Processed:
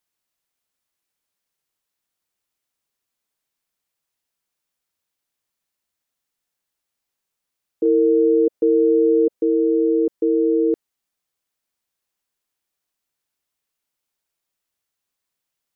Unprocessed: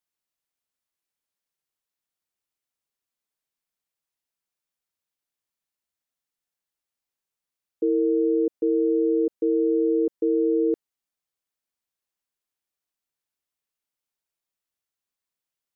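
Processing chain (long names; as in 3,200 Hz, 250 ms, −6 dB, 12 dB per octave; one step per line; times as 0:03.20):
0:07.85–0:09.42: dynamic equaliser 510 Hz, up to +5 dB, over −36 dBFS, Q 1.9
in parallel at +1 dB: brickwall limiter −21.5 dBFS, peak gain reduction 9 dB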